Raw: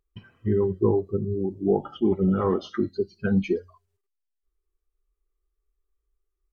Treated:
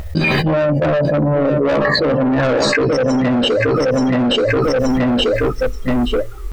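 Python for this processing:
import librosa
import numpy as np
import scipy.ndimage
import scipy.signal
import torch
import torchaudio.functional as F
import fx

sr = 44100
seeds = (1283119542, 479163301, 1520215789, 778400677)

p1 = fx.pitch_glide(x, sr, semitones=8.0, runs='ending unshifted')
p2 = fx.high_shelf(p1, sr, hz=3500.0, db=-7.0)
p3 = fx.notch(p2, sr, hz=710.0, q=12.0)
p4 = fx.rider(p3, sr, range_db=10, speed_s=0.5)
p5 = p3 + (p4 * 10.0 ** (1.5 / 20.0))
p6 = 10.0 ** (-20.5 / 20.0) * np.tanh(p5 / 10.0 ** (-20.5 / 20.0))
p7 = p6 + fx.echo_feedback(p6, sr, ms=878, feedback_pct=23, wet_db=-12.0, dry=0)
p8 = fx.env_flatten(p7, sr, amount_pct=100)
y = p8 * 10.0 ** (6.0 / 20.0)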